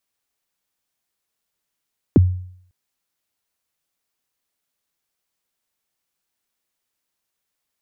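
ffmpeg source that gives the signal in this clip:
-f lavfi -i "aevalsrc='0.531*pow(10,-3*t/0.62)*sin(2*PI*(410*0.024/log(91/410)*(exp(log(91/410)*min(t,0.024)/0.024)-1)+91*max(t-0.024,0)))':d=0.55:s=44100"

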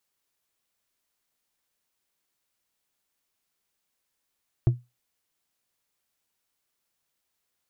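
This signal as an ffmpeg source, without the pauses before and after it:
-f lavfi -i "aevalsrc='0.251*pow(10,-3*t/0.22)*sin(2*PI*122*t)+0.0668*pow(10,-3*t/0.108)*sin(2*PI*336.4*t)+0.0178*pow(10,-3*t/0.068)*sin(2*PI*659.3*t)+0.00473*pow(10,-3*t/0.048)*sin(2*PI*1089.8*t)+0.00126*pow(10,-3*t/0.036)*sin(2*PI*1627.5*t)':d=0.89:s=44100"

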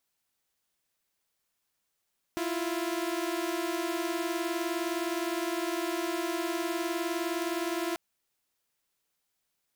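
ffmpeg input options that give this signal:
-f lavfi -i "aevalsrc='0.0316*((2*mod(329.63*t,1)-1)+(2*mod(349.23*t,1)-1))':d=5.59:s=44100"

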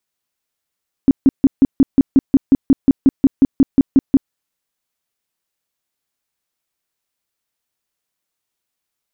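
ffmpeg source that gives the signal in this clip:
-f lavfi -i "aevalsrc='0.562*sin(2*PI*271*mod(t,0.18))*lt(mod(t,0.18),8/271)':d=3.24:s=44100"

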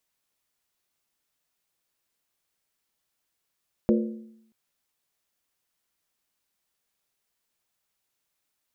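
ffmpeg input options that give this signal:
-f lavfi -i "aevalsrc='0.141*pow(10,-3*t/0.79)*sin(2*PI*222*t)+0.0944*pow(10,-3*t/0.626)*sin(2*PI*353.9*t)+0.0631*pow(10,-3*t/0.541)*sin(2*PI*474.2*t)+0.0422*pow(10,-3*t/0.521)*sin(2*PI*509.7*t)+0.0282*pow(10,-3*t/0.485)*sin(2*PI*589*t)':d=0.63:s=44100"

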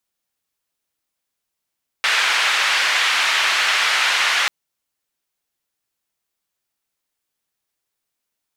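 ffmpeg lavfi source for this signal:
-f lavfi -i "anoisesrc=c=white:d=2.44:r=44100:seed=1,highpass=f=1400,lowpass=f=2500,volume=-1dB"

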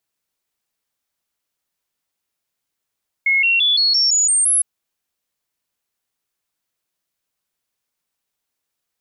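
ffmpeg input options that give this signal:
-f lavfi -i "aevalsrc='0.237*clip(min(mod(t,0.17),0.17-mod(t,0.17))/0.005,0,1)*sin(2*PI*2170*pow(2,floor(t/0.17)/3)*mod(t,0.17))':d=1.36:s=44100"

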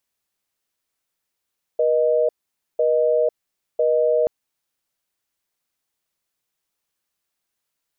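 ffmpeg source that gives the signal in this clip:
-f lavfi -i "aevalsrc='0.126*(sin(2*PI*480*t)+sin(2*PI*620*t))*clip(min(mod(t,1),0.5-mod(t,1))/0.005,0,1)':d=2.48:s=44100"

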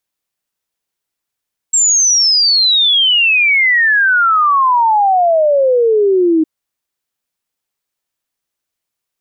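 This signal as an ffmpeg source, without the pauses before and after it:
-f lavfi -i "aevalsrc='0.398*clip(min(t,4.71-t)/0.01,0,1)*sin(2*PI*7600*4.71/log(310/7600)*(exp(log(310/7600)*t/4.71)-1))':d=4.71:s=44100"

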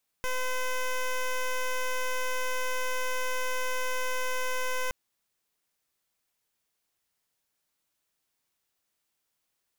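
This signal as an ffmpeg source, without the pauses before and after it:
-f lavfi -i "aevalsrc='0.0355*(2*lt(mod(510*t,1),0.12)-1)':d=4.67:s=44100"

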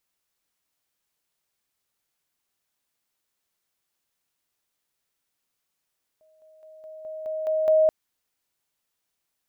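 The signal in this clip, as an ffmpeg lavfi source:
-f lavfi -i "aevalsrc='pow(10,(-57+6*floor(t/0.21))/20)*sin(2*PI*628*t)':d=1.68:s=44100"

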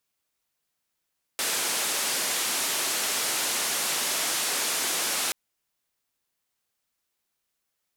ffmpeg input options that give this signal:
-f lavfi -i "anoisesrc=c=white:d=3.93:r=44100:seed=1,highpass=f=260,lowpass=f=11000,volume=-19.6dB"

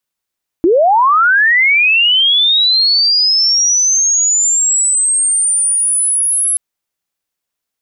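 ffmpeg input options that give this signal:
-f lavfi -i "aevalsrc='pow(10,(-6.5-4.5*t/5.93)/20)*sin(2*PI*(310*t+10690*t*t/(2*5.93)))':d=5.93:s=44100"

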